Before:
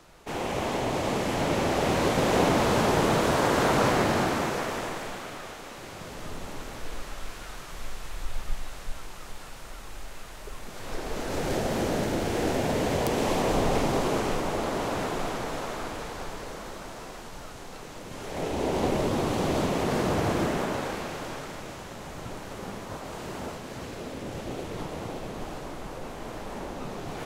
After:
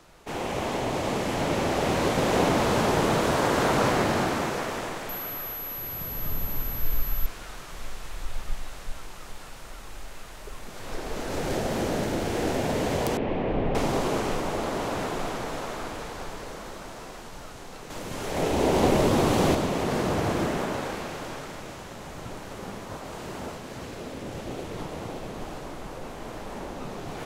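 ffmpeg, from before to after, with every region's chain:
ffmpeg -i in.wav -filter_complex "[0:a]asettb=1/sr,asplit=3[link_01][link_02][link_03];[link_01]atrim=end=5.094[link_04];[link_02]atrim=start=5.09:end=7.26,asetpts=PTS-STARTPTS,afade=type=in:duration=0.004:curve=qsin,afade=type=out:start_time=2.166:duration=0.004:curve=qsin,asubboost=boost=5.5:cutoff=190,aeval=exprs='val(0)+0.0224*sin(2*PI*12000*n/s)':channel_layout=same[link_05];[link_03]atrim=start=7.256[link_06];[link_04][link_05]acrossfade=duration=0.004:curve1=hsin:curve2=qsin[link_07];[link_07][link_06]acrossfade=duration=0.004:curve1=qsin:curve2=hsin,asettb=1/sr,asplit=3[link_08][link_09][link_10];[link_08]atrim=end=13.174[link_11];[link_09]atrim=start=13.17:end=13.75,asetpts=PTS-STARTPTS,afade=type=in:duration=0.004:curve=qsin,afade=type=out:start_time=0.576:duration=0.004:curve=qsin,lowpass=frequency=2600:width=0.5412,lowpass=frequency=2600:width=1.3066,equalizer=frequency=1200:width=0.91:gain=-7.5[link_12];[link_10]atrim=start=13.746[link_13];[link_11][link_12]acrossfade=duration=0.004:curve1=hsin:curve2=qsin[link_14];[link_14][link_13]acrossfade=duration=0.004:curve1=qsin:curve2=hsin,asettb=1/sr,asplit=3[link_15][link_16][link_17];[link_15]atrim=end=17.904[link_18];[link_16]atrim=start=17.9:end=19.55,asetpts=PTS-STARTPTS,afade=type=in:duration=0.004:curve=qsin,afade=type=out:start_time=1.646:duration=0.004:curve=qsin,highshelf=frequency=11000:gain=4,acontrast=28[link_19];[link_17]atrim=start=19.546[link_20];[link_18][link_19]acrossfade=duration=0.004:curve1=hsin:curve2=qsin[link_21];[link_21][link_20]acrossfade=duration=0.004:curve1=qsin:curve2=hsin" out.wav

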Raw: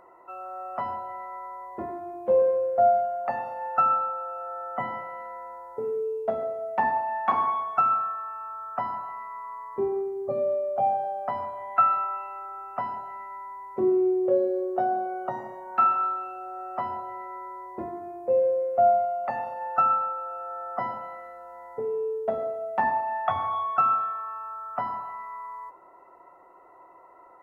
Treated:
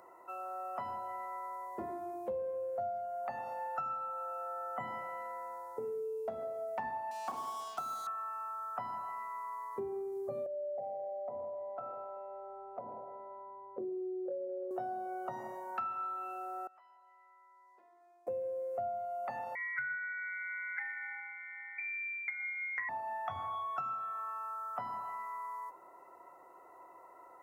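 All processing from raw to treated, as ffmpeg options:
ffmpeg -i in.wav -filter_complex "[0:a]asettb=1/sr,asplit=3[link_01][link_02][link_03];[link_01]atrim=end=7.114[link_04];[link_02]atrim=start=7.11:end=8.07,asetpts=PTS-STARTPTS,afade=type=in:duration=0.004:curve=qsin,afade=type=out:start_time=0.956:duration=0.004:curve=qsin,bandpass=frequency=410:width_type=q:width=0.61,aeval=exprs='sgn(val(0))*max(abs(val(0))-0.00473,0)':channel_layout=same[link_05];[link_03]atrim=start=8.066[link_06];[link_04][link_05]acrossfade=duration=0.004:curve1=hsin:curve2=qsin[link_07];[link_07][link_06]acrossfade=duration=0.004:curve1=qsin:curve2=hsin,asettb=1/sr,asplit=3[link_08][link_09][link_10];[link_08]atrim=end=10.464[link_11];[link_09]atrim=start=10.46:end=14.71,asetpts=PTS-STARTPTS,afade=type=in:duration=0.004:curve=qsin,afade=type=out:start_time=4.246:duration=0.004:curve=qsin,lowpass=frequency=540:width_type=q:width=4.7,acompressor=threshold=-40dB:ratio=2:attack=3.2:release=140:knee=1:detection=peak[link_12];[link_10]atrim=start=14.706[link_13];[link_11][link_12]acrossfade=duration=0.004:curve1=hsin:curve2=qsin[link_14];[link_14][link_13]acrossfade=duration=0.004:curve1=qsin:curve2=hsin,asettb=1/sr,asplit=3[link_15][link_16][link_17];[link_15]atrim=end=16.674[link_18];[link_16]atrim=start=16.67:end=18.27,asetpts=PTS-STARTPTS,afade=type=in:duration=0.004:curve=qsin,afade=type=out:start_time=1.596:duration=0.004:curve=qsin,aderivative,acompressor=threshold=-55dB:ratio=8:attack=3.2:release=140:knee=1:detection=peak,highpass=360,lowpass=3000[link_19];[link_17]atrim=start=18.266[link_20];[link_18][link_19]acrossfade=duration=0.004:curve1=hsin:curve2=qsin[link_21];[link_21][link_20]acrossfade=duration=0.004:curve1=qsin:curve2=hsin,asettb=1/sr,asplit=3[link_22][link_23][link_24];[link_22]atrim=end=19.554[link_25];[link_23]atrim=start=19.55:end=22.89,asetpts=PTS-STARTPTS,afade=type=in:duration=0.004:curve=qsin,afade=type=out:start_time=3.336:duration=0.004:curve=qsin,highpass=frequency=530:width=0.5412,highpass=frequency=530:width=1.3066,lowpass=frequency=2400:width_type=q:width=0.5098,lowpass=frequency=2400:width_type=q:width=0.6013,lowpass=frequency=2400:width_type=q:width=0.9,lowpass=frequency=2400:width_type=q:width=2.563,afreqshift=-2800[link_26];[link_24]atrim=start=22.886[link_27];[link_25][link_26]acrossfade=duration=0.004:curve1=hsin:curve2=qsin[link_28];[link_28][link_27]acrossfade=duration=0.004:curve1=qsin:curve2=hsin,bass=frequency=250:gain=1,treble=frequency=4000:gain=11,acrossover=split=130[link_29][link_30];[link_30]acompressor=threshold=-33dB:ratio=6[link_31];[link_29][link_31]amix=inputs=2:normalize=0,lowshelf=frequency=100:gain=-9.5,volume=-3.5dB" out.wav

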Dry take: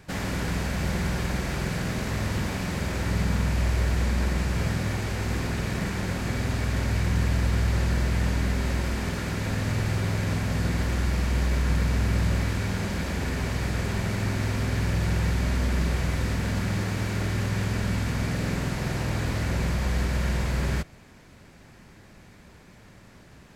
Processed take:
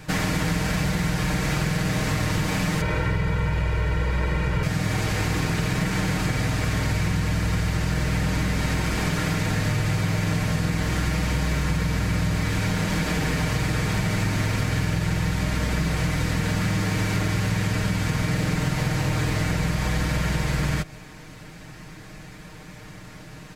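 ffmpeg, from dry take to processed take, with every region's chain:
ffmpeg -i in.wav -filter_complex "[0:a]asettb=1/sr,asplit=3[link_01][link_02][link_03];[link_01]atrim=end=2.814[link_04];[link_02]atrim=start=2.81:end=4.63,asetpts=PTS-STARTPTS,afade=type=in:duration=0.004:curve=qsin,afade=type=out:start_time=1.816:duration=0.004:curve=qsin,acrossover=split=3200[link_05][link_06];[link_06]acompressor=threshold=-57dB:ratio=4:attack=1:release=60[link_07];[link_05][link_07]amix=inputs=2:normalize=0,aecho=1:1:2.1:0.62,atrim=end_sample=80262[link_08];[link_03]atrim=start=4.626[link_09];[link_04][link_08]acrossfade=duration=0.004:curve1=hsin:curve2=qsin[link_10];[link_10][link_09]acrossfade=duration=0.004:curve1=qsin:curve2=hsin,equalizer=frequency=460:width=0.48:gain=-2,aecho=1:1:6.5:0.73,acompressor=threshold=-28dB:ratio=6,volume=8dB" out.wav

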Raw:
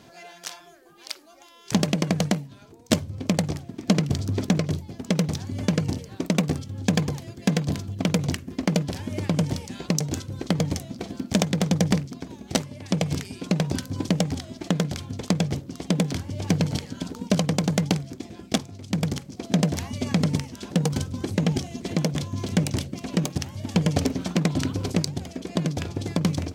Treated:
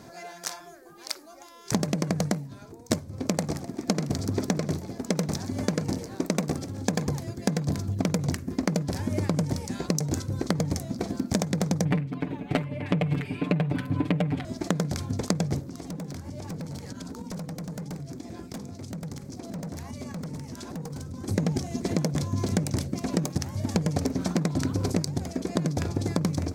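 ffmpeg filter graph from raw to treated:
ffmpeg -i in.wav -filter_complex "[0:a]asettb=1/sr,asplit=3[link_01][link_02][link_03];[link_01]atrim=end=3.004[link_04];[link_02]atrim=start=3:end=7.07,asetpts=PTS-STARTPTS,afade=type=in:duration=0.004:curve=qsin,afade=type=out:start_time=4.066:duration=0.004:curve=qsin,equalizer=frequency=100:width=0.84:gain=-7.5,asplit=5[link_05][link_06][link_07][link_08][link_09];[link_06]adelay=127,afreqshift=31,volume=-16dB[link_10];[link_07]adelay=254,afreqshift=62,volume=-23.7dB[link_11];[link_08]adelay=381,afreqshift=93,volume=-31.5dB[link_12];[link_09]adelay=508,afreqshift=124,volume=-39.2dB[link_13];[link_05][link_10][link_11][link_12][link_13]amix=inputs=5:normalize=0,atrim=end_sample=179487[link_14];[link_03]atrim=start=7.066[link_15];[link_04][link_14]acrossfade=duration=0.004:curve1=hsin:curve2=qsin[link_16];[link_16][link_15]acrossfade=duration=0.004:curve1=qsin:curve2=hsin,asettb=1/sr,asplit=3[link_17][link_18][link_19];[link_17]atrim=end=11.854[link_20];[link_18]atrim=start=11.85:end=14.45,asetpts=PTS-STARTPTS,afade=type=in:duration=0.004:curve=qsin,afade=type=out:start_time=2.596:duration=0.004:curve=qsin,highshelf=frequency=4000:width_type=q:width=3:gain=-13.5,aecho=1:1:6.8:0.95,atrim=end_sample=114660[link_21];[link_19]atrim=start=14.446[link_22];[link_20][link_21]acrossfade=duration=0.004:curve1=hsin:curve2=qsin[link_23];[link_23][link_22]acrossfade=duration=0.004:curve1=qsin:curve2=hsin,asettb=1/sr,asplit=3[link_24][link_25][link_26];[link_24]atrim=end=15.634[link_27];[link_25]atrim=start=15.63:end=21.28,asetpts=PTS-STARTPTS,afade=type=in:duration=0.004:curve=qsin,afade=type=out:start_time=5.646:duration=0.004:curve=qsin,bandreject=frequency=50:width_type=h:width=6,bandreject=frequency=100:width_type=h:width=6,bandreject=frequency=150:width_type=h:width=6,bandreject=frequency=200:width_type=h:width=6,bandreject=frequency=250:width_type=h:width=6,bandreject=frequency=300:width_type=h:width=6,bandreject=frequency=350:width_type=h:width=6,bandreject=frequency=400:width_type=h:width=6,bandreject=frequency=450:width_type=h:width=6,bandreject=frequency=500:width_type=h:width=6,volume=23dB,asoftclip=hard,volume=-23dB,acompressor=threshold=-37dB:ratio=12:attack=3.2:release=140:knee=1:detection=peak[link_28];[link_26]atrim=start=21.276[link_29];[link_27][link_28]acrossfade=duration=0.004:curve1=hsin:curve2=qsin[link_30];[link_30][link_29]acrossfade=duration=0.004:curve1=qsin:curve2=hsin,equalizer=frequency=3000:width_type=o:width=0.67:gain=-11,acompressor=threshold=-26dB:ratio=6,volume=4dB" out.wav

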